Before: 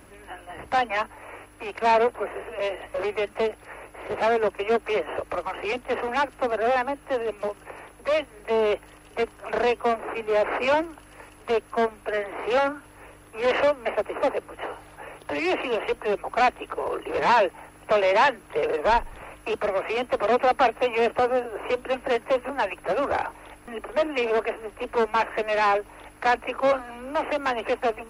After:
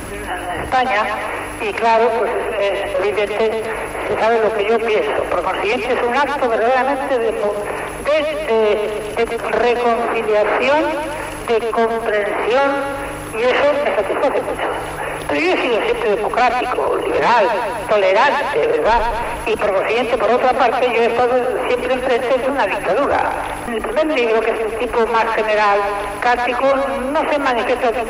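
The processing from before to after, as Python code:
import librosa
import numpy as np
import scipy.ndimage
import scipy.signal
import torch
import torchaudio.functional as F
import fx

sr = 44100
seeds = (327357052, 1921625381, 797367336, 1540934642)

y = fx.echo_feedback(x, sr, ms=126, feedback_pct=47, wet_db=-11)
y = fx.env_flatten(y, sr, amount_pct=50)
y = y * 10.0 ** (5.0 / 20.0)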